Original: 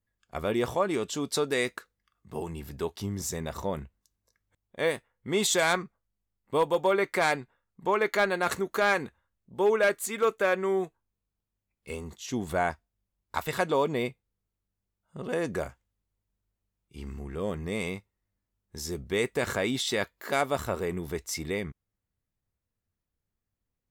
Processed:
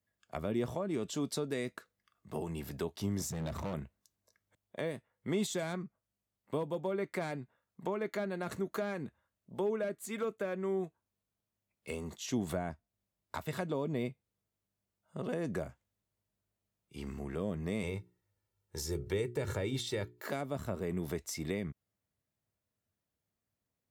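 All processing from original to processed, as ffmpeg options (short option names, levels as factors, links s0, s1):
-filter_complex "[0:a]asettb=1/sr,asplit=3[s0][s1][s2];[s0]atrim=end=3.304[s3];[s1]atrim=start=3.3:end=3.74,asetpts=PTS-STARTPTS,afade=t=in:d=0.004:c=qsin,afade=t=out:st=0.436:d=0.004:c=qsin,bass=f=250:g=10,treble=f=4000:g=-4,asoftclip=type=hard:threshold=0.0211[s4];[s2]atrim=start=3.736[s5];[s3][s4]acrossfade=d=0.004:c1=hsin:c2=qsin[s6];[s6][s5]acrossfade=d=0.004:c1=qsin:c2=hsin,asettb=1/sr,asplit=3[s7][s8][s9];[s7]atrim=end=17.834[s10];[s8]atrim=start=17.83:end=20.26,asetpts=PTS-STARTPTS,afade=t=in:d=0.004:c=qsin,afade=t=out:st=2.426:d=0.004:c=qsin,equalizer=f=95:w=1.7:g=5.5,bandreject=f=60:t=h:w=6,bandreject=f=120:t=h:w=6,bandreject=f=180:t=h:w=6,bandreject=f=240:t=h:w=6,bandreject=f=300:t=h:w=6,bandreject=f=360:t=h:w=6,bandreject=f=420:t=h:w=6,aecho=1:1:2.2:0.61,atrim=end_sample=107163[s11];[s9]atrim=start=20.256[s12];[s10][s11]acrossfade=d=0.004:c1=hsin:c2=qsin[s13];[s13][s12]acrossfade=d=0.004:c1=qsin:c2=hsin,highpass=99,equalizer=f=630:w=6.4:g=7,acrossover=split=290[s14][s15];[s15]acompressor=threshold=0.0126:ratio=8[s16];[s14][s16]amix=inputs=2:normalize=0"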